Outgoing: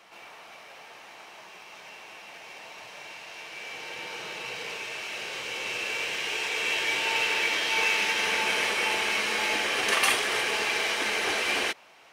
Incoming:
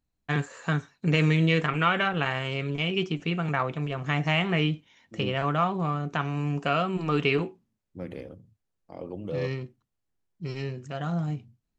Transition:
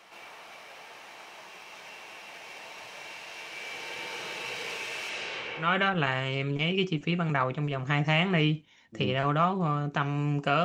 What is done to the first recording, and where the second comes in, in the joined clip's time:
outgoing
5.09–5.74 LPF 9700 Hz -> 1200 Hz
5.65 switch to incoming from 1.84 s, crossfade 0.18 s

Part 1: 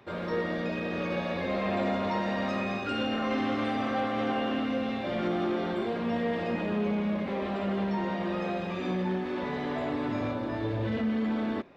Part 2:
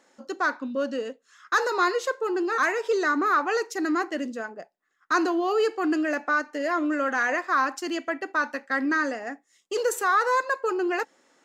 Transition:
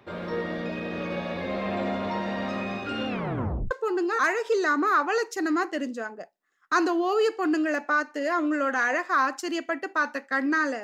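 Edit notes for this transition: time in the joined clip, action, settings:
part 1
3.08 tape stop 0.63 s
3.71 switch to part 2 from 2.1 s

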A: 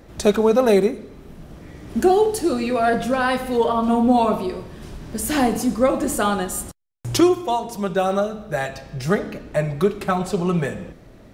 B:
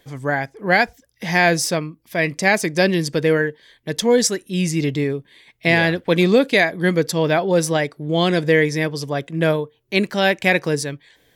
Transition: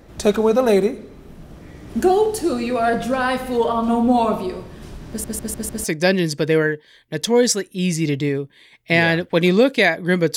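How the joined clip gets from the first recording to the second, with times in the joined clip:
A
5.09 stutter in place 0.15 s, 5 plays
5.84 switch to B from 2.59 s

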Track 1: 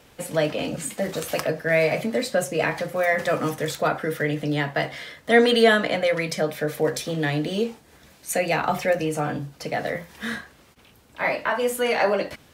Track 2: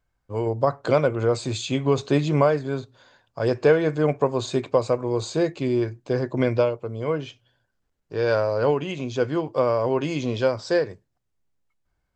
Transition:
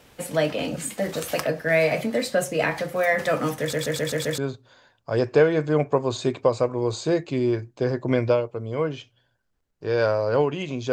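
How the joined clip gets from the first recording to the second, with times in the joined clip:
track 1
3.6 stutter in place 0.13 s, 6 plays
4.38 switch to track 2 from 2.67 s

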